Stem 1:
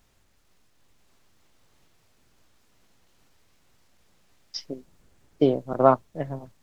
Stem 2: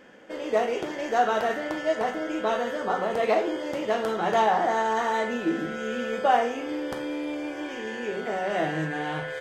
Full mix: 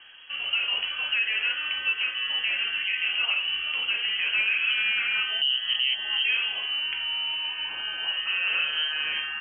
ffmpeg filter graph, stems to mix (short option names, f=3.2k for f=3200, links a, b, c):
-filter_complex "[0:a]lowshelf=f=540:t=q:w=1.5:g=10,volume=-1.5dB[a];[1:a]highshelf=f=2.5k:g=-5.5,volume=2dB[b];[a][b]amix=inputs=2:normalize=0,lowpass=f=2.8k:t=q:w=0.5098,lowpass=f=2.8k:t=q:w=0.6013,lowpass=f=2.8k:t=q:w=0.9,lowpass=f=2.8k:t=q:w=2.563,afreqshift=-3300,alimiter=limit=-16.5dB:level=0:latency=1:release=206"